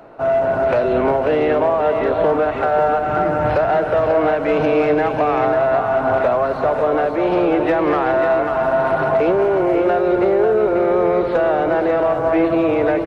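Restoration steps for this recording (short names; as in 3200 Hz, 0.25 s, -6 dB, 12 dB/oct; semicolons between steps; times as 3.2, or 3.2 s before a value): inverse comb 0.542 s -6.5 dB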